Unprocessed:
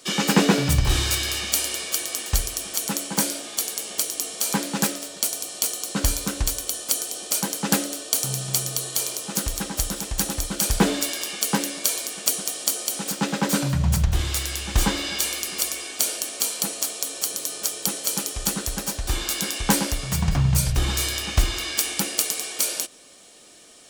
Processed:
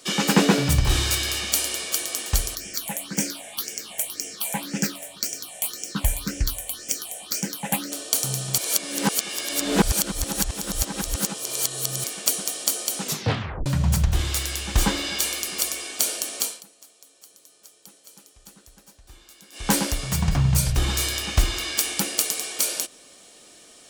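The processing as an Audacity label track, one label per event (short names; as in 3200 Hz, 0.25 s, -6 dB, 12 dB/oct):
2.550000	7.920000	phaser stages 6, 1.9 Hz, lowest notch 320–1100 Hz
8.580000	12.040000	reverse
13.000000	13.000000	tape stop 0.66 s
16.390000	19.750000	dip -23.5 dB, fades 0.24 s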